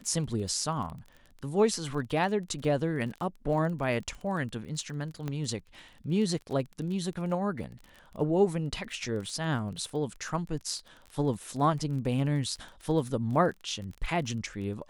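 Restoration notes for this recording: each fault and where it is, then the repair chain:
crackle 26 per s -37 dBFS
5.28 s: pop -21 dBFS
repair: de-click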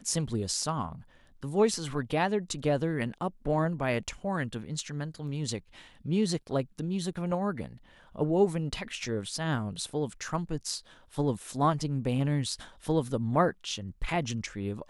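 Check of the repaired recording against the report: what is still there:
5.28 s: pop

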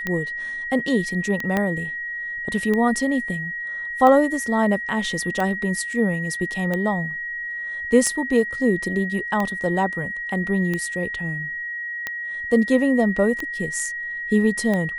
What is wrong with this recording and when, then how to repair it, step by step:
tick 45 rpm -12 dBFS
whine 1.9 kHz -27 dBFS
1.57 s: pop -9 dBFS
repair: de-click; band-stop 1.9 kHz, Q 30

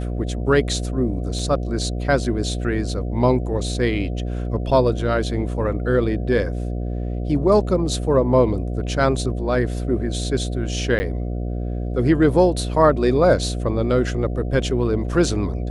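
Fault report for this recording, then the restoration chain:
buzz 60 Hz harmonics 12 -25 dBFS
1.39 s: dropout 3.1 ms
10.99–11.00 s: dropout 10 ms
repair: de-hum 60 Hz, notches 12; interpolate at 1.39 s, 3.1 ms; interpolate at 10.99 s, 10 ms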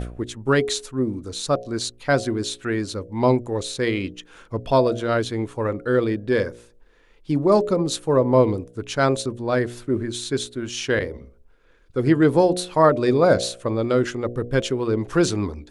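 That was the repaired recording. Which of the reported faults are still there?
nothing left

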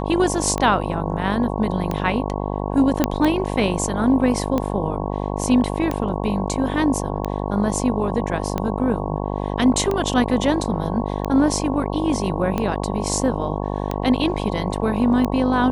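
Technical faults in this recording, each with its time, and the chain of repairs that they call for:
buzz 50 Hz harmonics 22 -25 dBFS
tick 45 rpm -10 dBFS
3.04 s: pop -3 dBFS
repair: de-click; de-hum 50 Hz, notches 22

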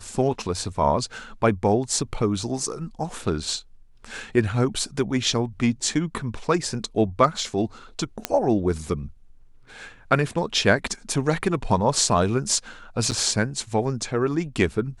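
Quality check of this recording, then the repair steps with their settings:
8.25 s: pop -6 dBFS
13.11–13.12 s: dropout 7.9 ms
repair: de-click; interpolate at 13.11 s, 7.9 ms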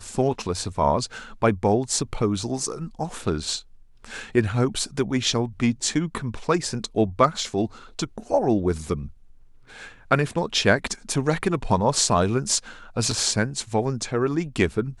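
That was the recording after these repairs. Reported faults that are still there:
nothing left

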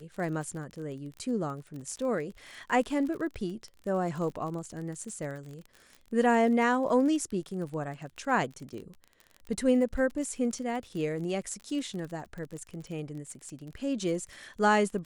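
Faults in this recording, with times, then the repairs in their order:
crackle 32 per s -37 dBFS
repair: de-click

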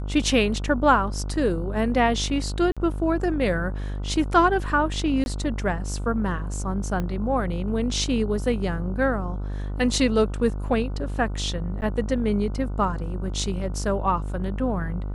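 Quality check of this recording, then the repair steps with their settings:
buzz 50 Hz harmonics 30 -29 dBFS
2.72–2.77 s: dropout 46 ms
5.24–5.26 s: dropout 21 ms
7.00 s: pop -16 dBFS
11.81–11.82 s: dropout 9.9 ms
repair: de-click; de-hum 50 Hz, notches 30; interpolate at 2.72 s, 46 ms; interpolate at 5.24 s, 21 ms; interpolate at 11.81 s, 9.9 ms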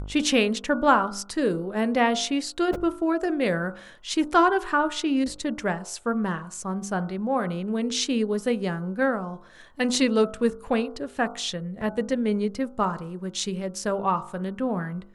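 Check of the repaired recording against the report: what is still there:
7.00 s: pop

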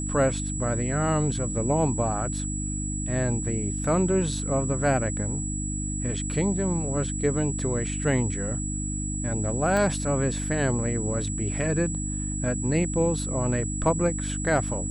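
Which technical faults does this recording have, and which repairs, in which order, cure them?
hum 50 Hz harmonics 6 -31 dBFS
whine 7.8 kHz -33 dBFS
9.77 s: pop -15 dBFS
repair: de-click; band-stop 7.8 kHz, Q 30; de-hum 50 Hz, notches 6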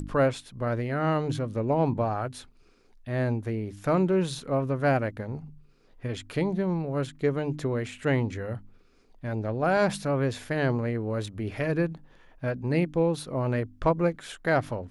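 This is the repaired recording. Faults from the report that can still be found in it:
9.77 s: pop

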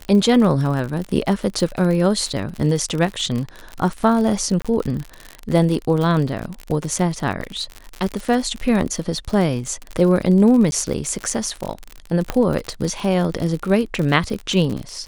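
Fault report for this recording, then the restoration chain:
crackle 53 per s -23 dBFS
4.62–4.65 s: dropout 26 ms
10.71–10.72 s: dropout 11 ms
12.30 s: pop -7 dBFS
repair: de-click; interpolate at 4.62 s, 26 ms; interpolate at 10.71 s, 11 ms

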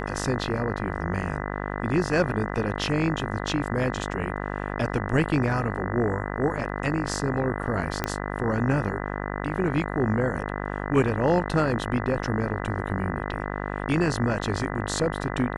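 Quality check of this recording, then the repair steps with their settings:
buzz 50 Hz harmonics 40 -31 dBFS
8.04 s: pop -10 dBFS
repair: de-click; de-hum 50 Hz, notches 40

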